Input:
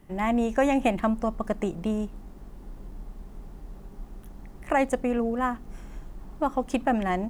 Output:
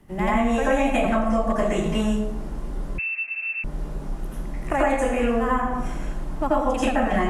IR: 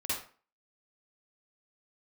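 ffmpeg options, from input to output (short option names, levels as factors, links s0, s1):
-filter_complex "[1:a]atrim=start_sample=2205,asetrate=24696,aresample=44100[s0];[0:a][s0]afir=irnorm=-1:irlink=0,asettb=1/sr,asplit=3[s1][s2][s3];[s1]atrim=end=2.984[s4];[s2]atrim=start=2.98:end=3.64,asetpts=PTS-STARTPTS,afade=t=in:d=0.004:c=qsin,afade=t=out:st=0.656:d=0.004:c=qsin,lowpass=f=2300:t=q:w=0.5098,lowpass=f=2300:t=q:w=0.6013,lowpass=f=2300:t=q:w=0.9,lowpass=f=2300:t=q:w=2.563,afreqshift=-2700[s5];[s3]atrim=start=3.636[s6];[s4][s5]acrossfade=d=0.004:c1=hsin:c2=qsin[s7];[s7][s6]acrossfade=d=0.004:c1=qsin:c2=hsin,acrossover=split=81|820[s8][s9][s10];[s8]acompressor=threshold=0.0316:ratio=4[s11];[s9]acompressor=threshold=0.0447:ratio=4[s12];[s10]acompressor=threshold=0.0282:ratio=4[s13];[s11][s12][s13]amix=inputs=3:normalize=0,volume=1.58"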